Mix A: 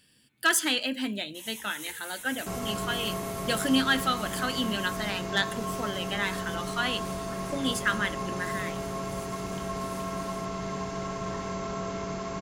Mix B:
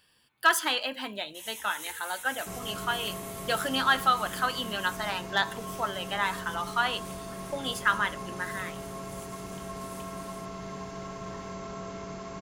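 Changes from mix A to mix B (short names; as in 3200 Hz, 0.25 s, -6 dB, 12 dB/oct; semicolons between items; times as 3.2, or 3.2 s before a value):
speech: add graphic EQ 125/250/1000/2000/8000 Hz -6/-10/+10/-3/-7 dB; second sound -5.5 dB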